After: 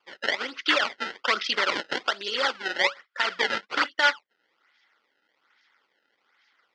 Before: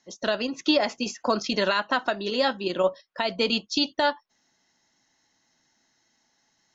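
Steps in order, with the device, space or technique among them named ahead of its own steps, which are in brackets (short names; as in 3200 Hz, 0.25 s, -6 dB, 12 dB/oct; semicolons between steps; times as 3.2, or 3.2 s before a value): circuit-bent sampling toy (decimation with a swept rate 22×, swing 160% 1.2 Hz; speaker cabinet 560–5300 Hz, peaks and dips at 670 Hz -8 dB, 950 Hz -3 dB, 1400 Hz +10 dB, 2000 Hz +8 dB, 3200 Hz +7 dB, 4800 Hz +5 dB); 1.72–2.55 dynamic EQ 1900 Hz, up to -5 dB, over -33 dBFS, Q 1.2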